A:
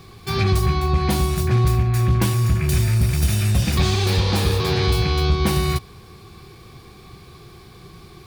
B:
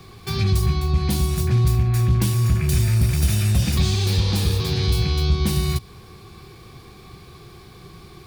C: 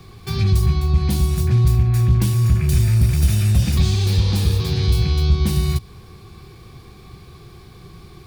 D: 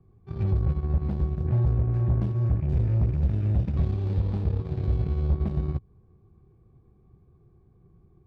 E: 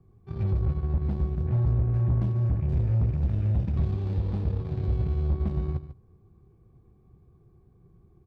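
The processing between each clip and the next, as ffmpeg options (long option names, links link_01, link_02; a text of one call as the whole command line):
ffmpeg -i in.wav -filter_complex "[0:a]acrossover=split=280|3000[link_01][link_02][link_03];[link_02]acompressor=threshold=-33dB:ratio=6[link_04];[link_01][link_04][link_03]amix=inputs=3:normalize=0" out.wav
ffmpeg -i in.wav -af "lowshelf=frequency=170:gain=6,volume=-1.5dB" out.wav
ffmpeg -i in.wav -af "adynamicsmooth=sensitivity=0.5:basefreq=630,aeval=exprs='0.447*(cos(1*acos(clip(val(0)/0.447,-1,1)))-cos(1*PI/2))+0.0355*(cos(7*acos(clip(val(0)/0.447,-1,1)))-cos(7*PI/2))':channel_layout=same,volume=-8dB" out.wav
ffmpeg -i in.wav -af "asoftclip=type=tanh:threshold=-17dB,aecho=1:1:145:0.224" out.wav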